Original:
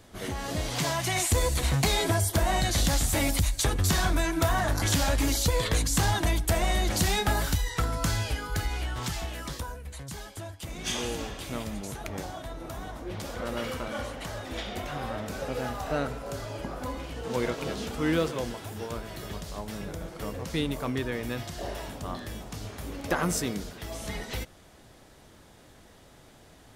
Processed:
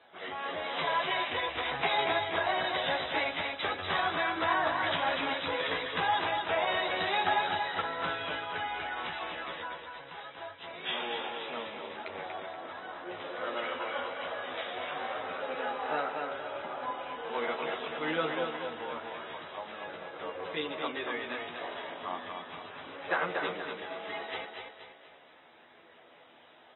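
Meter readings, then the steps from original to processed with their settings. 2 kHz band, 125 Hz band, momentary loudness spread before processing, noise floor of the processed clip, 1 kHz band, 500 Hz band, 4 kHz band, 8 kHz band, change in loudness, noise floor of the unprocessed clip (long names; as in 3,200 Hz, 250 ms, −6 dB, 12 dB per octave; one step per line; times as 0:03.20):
+1.5 dB, −21.5 dB, 13 LU, −57 dBFS, +2.0 dB, −2.0 dB, −2.5 dB, below −40 dB, −3.5 dB, −54 dBFS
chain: multi-voice chorus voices 4, 0.13 Hz, delay 12 ms, depth 1.3 ms
band-pass filter 600–7,700 Hz
high-frequency loss of the air 140 metres
on a send: repeating echo 238 ms, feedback 44%, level −5 dB
on the sum: level +4 dB
AAC 16 kbit/s 24,000 Hz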